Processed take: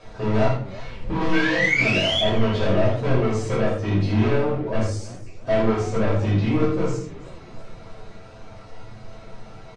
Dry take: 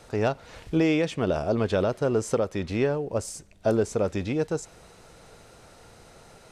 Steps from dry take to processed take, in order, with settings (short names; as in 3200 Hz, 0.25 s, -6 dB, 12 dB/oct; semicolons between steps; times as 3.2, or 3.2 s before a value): reverb removal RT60 0.64 s; granular stretch 1.5×, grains 55 ms; painted sound rise, 1.32–2.21, 1500–3500 Hz -27 dBFS; hard clip -28.5 dBFS, distortion -7 dB; air absorption 130 m; on a send: early reflections 27 ms -6.5 dB, 79 ms -7 dB; on the sum: shoebox room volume 310 m³, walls furnished, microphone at 5.5 m; warbling echo 0.317 s, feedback 47%, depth 207 cents, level -18.5 dB